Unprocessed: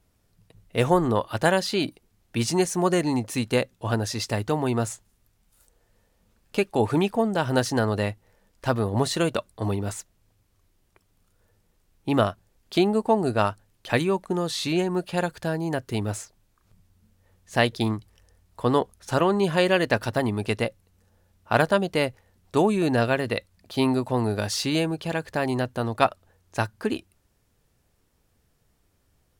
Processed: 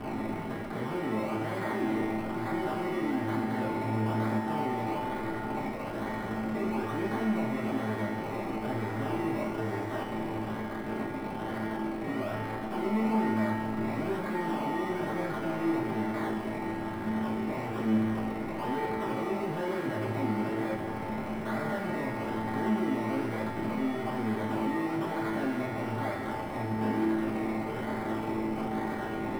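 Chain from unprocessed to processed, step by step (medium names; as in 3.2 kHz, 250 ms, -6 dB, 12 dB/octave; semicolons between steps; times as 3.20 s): one-bit comparator; decimation with a swept rate 22×, swing 60% 1.1 Hz; feedback comb 110 Hz, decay 1.9 s, mix 90%; two-band feedback delay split 1 kHz, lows 369 ms, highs 248 ms, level -12.5 dB; reverberation RT60 0.40 s, pre-delay 3 ms, DRR -5 dB; trim -3.5 dB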